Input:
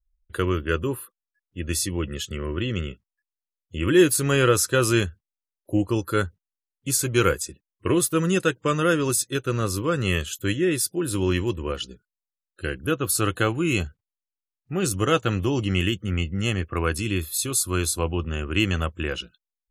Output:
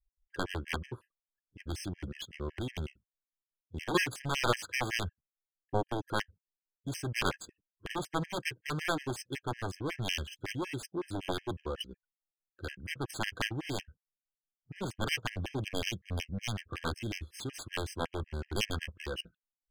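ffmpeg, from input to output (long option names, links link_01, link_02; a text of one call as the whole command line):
ffmpeg -i in.wav -af "aeval=exprs='0.562*(cos(1*acos(clip(val(0)/0.562,-1,1)))-cos(1*PI/2))+0.2*(cos(7*acos(clip(val(0)/0.562,-1,1)))-cos(7*PI/2))':channel_layout=same,adynamicsmooth=sensitivity=4.5:basefreq=1400,afftfilt=real='re*gt(sin(2*PI*5.4*pts/sr)*(1-2*mod(floor(b*sr/1024/1600),2)),0)':imag='im*gt(sin(2*PI*5.4*pts/sr)*(1-2*mod(floor(b*sr/1024/1600),2)),0)':win_size=1024:overlap=0.75,volume=-8.5dB" out.wav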